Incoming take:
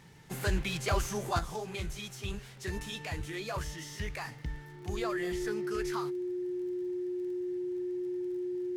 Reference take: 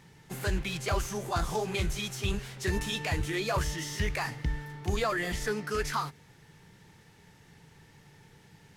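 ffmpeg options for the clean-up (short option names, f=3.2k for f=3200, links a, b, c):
-af "adeclick=t=4,bandreject=f=360:w=30,asetnsamples=n=441:p=0,asendcmd='1.39 volume volume 7dB',volume=0dB"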